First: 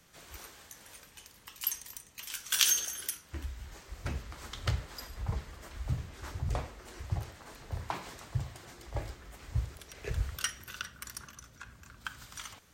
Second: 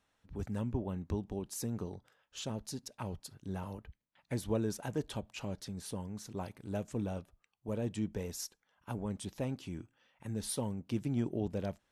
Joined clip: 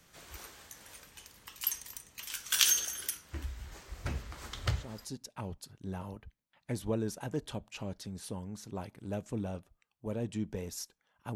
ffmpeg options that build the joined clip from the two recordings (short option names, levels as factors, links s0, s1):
-filter_complex "[0:a]apad=whole_dur=11.35,atrim=end=11.35,atrim=end=5.14,asetpts=PTS-STARTPTS[s0];[1:a]atrim=start=2.3:end=8.97,asetpts=PTS-STARTPTS[s1];[s0][s1]acrossfade=d=0.46:c1=tri:c2=tri"